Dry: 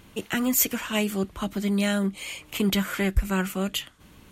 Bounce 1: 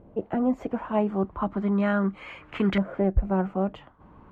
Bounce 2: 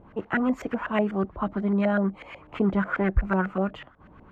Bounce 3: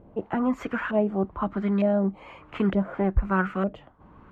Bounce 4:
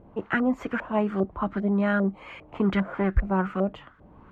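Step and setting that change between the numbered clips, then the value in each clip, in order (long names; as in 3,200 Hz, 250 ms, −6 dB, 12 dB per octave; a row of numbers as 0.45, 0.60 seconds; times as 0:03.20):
auto-filter low-pass, speed: 0.36, 8.1, 1.1, 2.5 Hertz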